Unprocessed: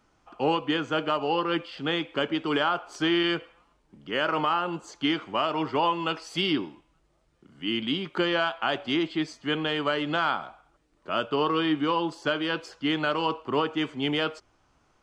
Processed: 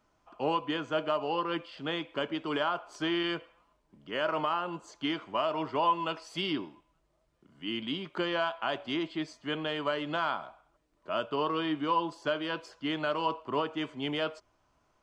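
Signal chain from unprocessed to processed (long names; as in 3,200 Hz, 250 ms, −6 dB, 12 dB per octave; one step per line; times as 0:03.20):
hollow resonant body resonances 630/1,000 Hz, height 8 dB
level −6.5 dB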